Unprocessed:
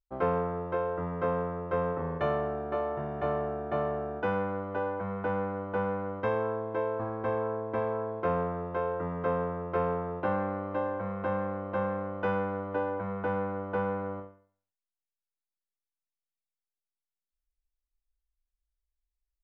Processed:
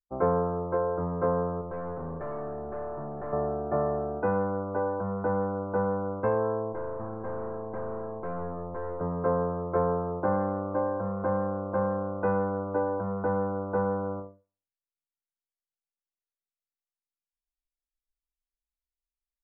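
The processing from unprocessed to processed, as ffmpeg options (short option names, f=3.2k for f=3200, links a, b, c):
-filter_complex "[0:a]asettb=1/sr,asplit=3[a][b][c];[a]atrim=end=1.614[d];[b]atrim=start=1.61:end=3.33,asetpts=PTS-STARTPTS,afade=t=in:d=0.004:c=qsin,afade=t=out:st=1.716:d=0.004:c=qsin,aeval=exprs='(tanh(63.1*val(0)+0.35)-tanh(0.35))/63.1':c=same[e];[c]atrim=start=3.326[f];[d][e]acrossfade=d=0.004:c1=hsin:c2=qsin[g];[g][f]acrossfade=d=0.004:c1=qsin:c2=hsin,asettb=1/sr,asplit=3[h][i][j];[h]atrim=end=6.724[k];[i]atrim=start=6.72:end=9.01,asetpts=PTS-STARTPTS,afade=t=in:d=0.004:c=qsin,afade=t=out:st=2.286:d=0.004:c=qsin,aeval=exprs='(tanh(56.2*val(0)+0.65)-tanh(0.65))/56.2':c=same[l];[j]atrim=start=9.006[m];[k][l]acrossfade=d=0.004:c1=hsin:c2=qsin[n];[n][m]acrossfade=d=0.004:c1=qsin:c2=hsin,lowpass=1.2k,afftdn=nr=15:nf=-52,volume=3.5dB"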